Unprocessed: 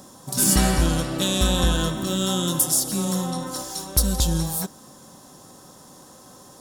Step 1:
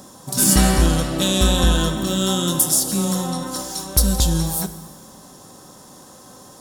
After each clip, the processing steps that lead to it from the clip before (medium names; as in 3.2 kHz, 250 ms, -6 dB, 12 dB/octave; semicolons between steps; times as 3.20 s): plate-style reverb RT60 1.6 s, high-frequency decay 0.9×, DRR 11.5 dB; trim +3 dB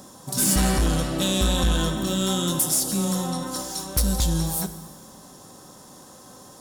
saturation -12 dBFS, distortion -14 dB; trim -2.5 dB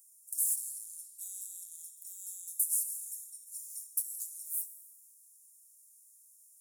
inverse Chebyshev high-pass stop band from 2.2 kHz, stop band 70 dB; trim -5.5 dB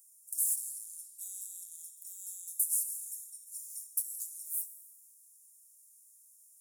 band-stop 4.2 kHz, Q 20